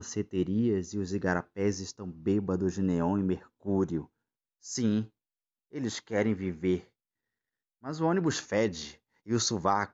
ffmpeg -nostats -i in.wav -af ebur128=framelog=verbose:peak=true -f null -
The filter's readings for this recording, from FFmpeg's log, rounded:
Integrated loudness:
  I:         -30.7 LUFS
  Threshold: -41.2 LUFS
Loudness range:
  LRA:         3.0 LU
  Threshold: -52.2 LUFS
  LRA low:   -33.6 LUFS
  LRA high:  -30.6 LUFS
True peak:
  Peak:      -12.1 dBFS